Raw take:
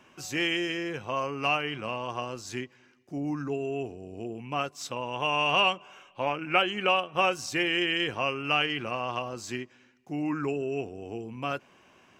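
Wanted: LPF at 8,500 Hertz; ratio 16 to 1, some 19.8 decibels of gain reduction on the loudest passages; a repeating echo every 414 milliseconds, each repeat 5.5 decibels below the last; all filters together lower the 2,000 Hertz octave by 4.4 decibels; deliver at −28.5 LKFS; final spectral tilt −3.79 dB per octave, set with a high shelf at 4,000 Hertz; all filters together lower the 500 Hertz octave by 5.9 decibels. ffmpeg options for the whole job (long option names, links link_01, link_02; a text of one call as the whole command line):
ffmpeg -i in.wav -af "lowpass=8500,equalizer=frequency=500:width_type=o:gain=-7.5,equalizer=frequency=2000:width_type=o:gain=-8,highshelf=frequency=4000:gain=4.5,acompressor=threshold=-43dB:ratio=16,aecho=1:1:414|828|1242|1656|2070|2484|2898:0.531|0.281|0.149|0.079|0.0419|0.0222|0.0118,volume=17.5dB" out.wav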